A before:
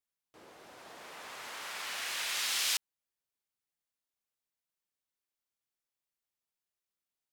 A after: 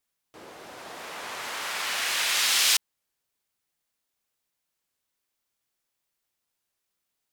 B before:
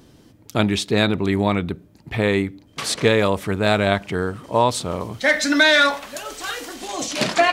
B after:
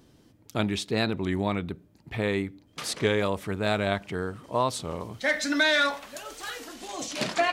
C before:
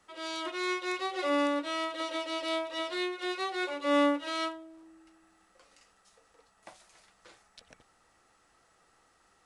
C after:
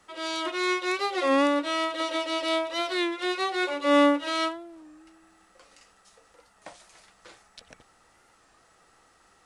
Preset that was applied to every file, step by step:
warped record 33 1/3 rpm, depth 100 cents; peak normalisation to -9 dBFS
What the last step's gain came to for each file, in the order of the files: +9.5 dB, -8.0 dB, +6.0 dB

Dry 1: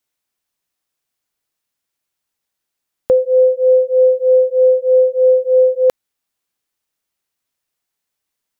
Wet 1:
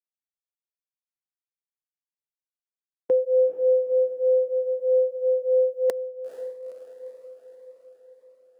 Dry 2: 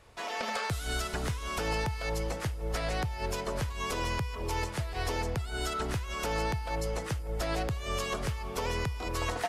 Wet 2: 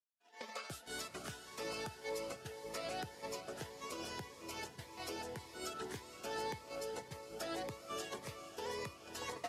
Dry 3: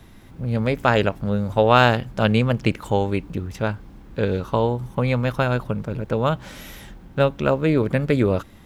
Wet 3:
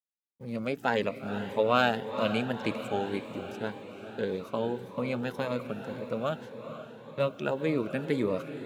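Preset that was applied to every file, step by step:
coarse spectral quantiser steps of 15 dB; gate -33 dBFS, range -56 dB; high-pass 230 Hz 12 dB/octave; on a send: echo that smears into a reverb 471 ms, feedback 60%, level -10.5 dB; on the sum: Shepard-style phaser rising 1.8 Hz; trim -6.5 dB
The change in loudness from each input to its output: -10.0 LU, -11.0 LU, -10.0 LU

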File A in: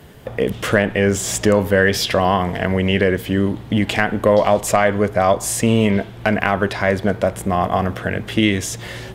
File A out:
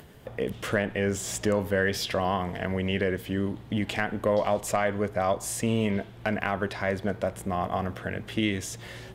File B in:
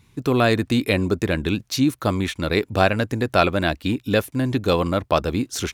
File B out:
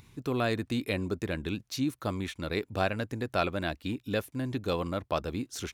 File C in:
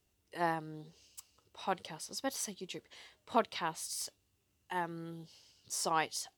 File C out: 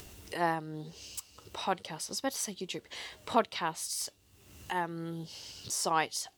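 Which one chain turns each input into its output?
upward compressor, threshold -35 dBFS; peak normalisation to -12 dBFS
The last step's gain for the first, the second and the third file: -10.5 dB, -11.0 dB, +3.0 dB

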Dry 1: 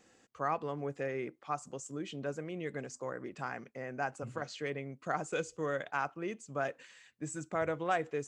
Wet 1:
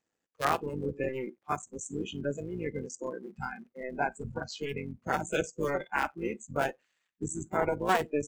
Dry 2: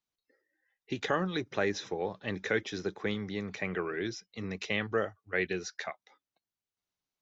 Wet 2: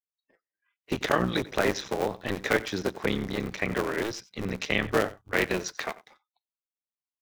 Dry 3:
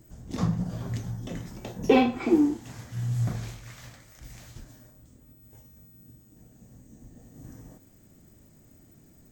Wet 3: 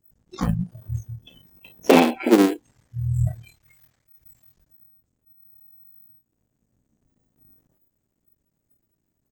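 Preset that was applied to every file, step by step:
cycle switcher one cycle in 3, muted; delay 91 ms -19 dB; spectral noise reduction 25 dB; trim +7 dB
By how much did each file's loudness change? +4.0 LU, +5.0 LU, +6.0 LU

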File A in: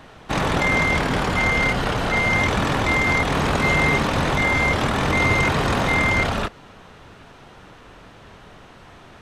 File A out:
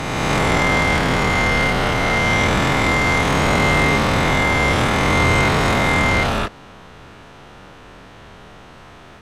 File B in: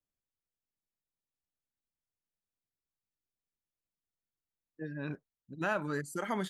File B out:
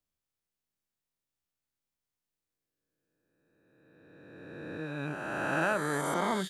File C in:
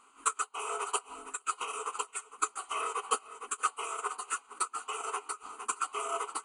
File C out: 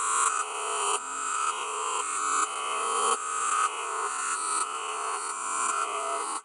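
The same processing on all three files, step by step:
reverse spectral sustain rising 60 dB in 2.24 s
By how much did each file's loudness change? +3.0 LU, +4.5 LU, +7.5 LU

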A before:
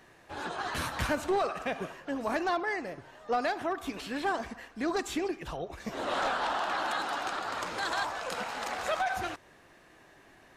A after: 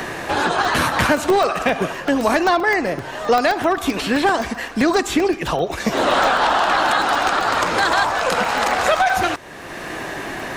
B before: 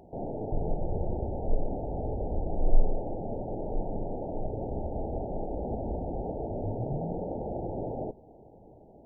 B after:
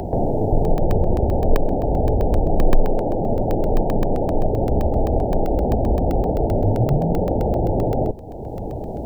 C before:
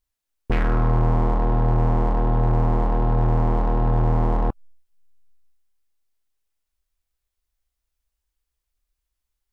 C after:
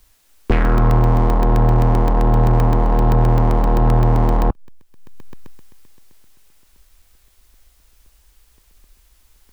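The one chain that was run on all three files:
crackling interface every 0.13 s, samples 64, zero, from 0.65 s; three bands compressed up and down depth 70%; peak normalisation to -3 dBFS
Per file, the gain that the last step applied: +14.5 dB, +13.0 dB, +5.0 dB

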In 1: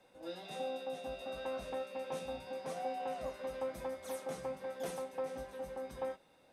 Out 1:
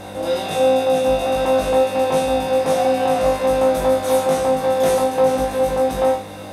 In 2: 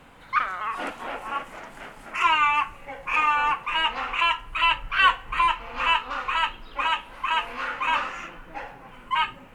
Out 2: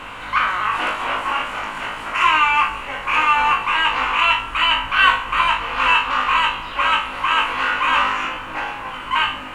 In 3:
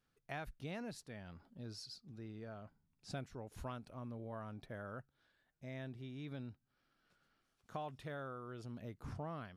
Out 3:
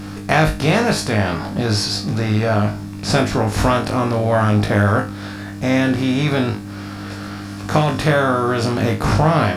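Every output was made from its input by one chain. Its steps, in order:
spectral levelling over time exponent 0.6; flutter echo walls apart 3.3 m, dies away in 0.29 s; mains buzz 100 Hz, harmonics 3, -56 dBFS -1 dB/octave; normalise loudness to -18 LUFS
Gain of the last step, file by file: +16.5 dB, +0.5 dB, +25.0 dB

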